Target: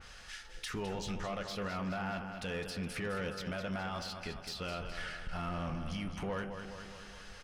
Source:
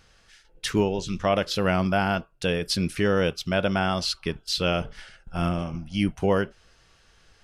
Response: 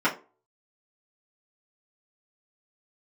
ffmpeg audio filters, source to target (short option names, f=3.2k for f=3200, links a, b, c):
-filter_complex "[0:a]equalizer=f=300:t=o:w=2.3:g=-9,acompressor=threshold=-38dB:ratio=6,alimiter=level_in=11dB:limit=-24dB:level=0:latency=1:release=109,volume=-11dB,aecho=1:1:209|418|627|836|1045|1254|1463:0.335|0.201|0.121|0.0724|0.0434|0.026|0.0156,asplit=2[a][b];[1:a]atrim=start_sample=2205,asetrate=39690,aresample=44100[c];[b][c]afir=irnorm=-1:irlink=0,volume=-20dB[d];[a][d]amix=inputs=2:normalize=0,asoftclip=type=tanh:threshold=-37.5dB,adynamicequalizer=threshold=0.001:dfrequency=2900:dqfactor=0.7:tfrequency=2900:tqfactor=0.7:attack=5:release=100:ratio=0.375:range=3:mode=cutabove:tftype=highshelf,volume=7dB"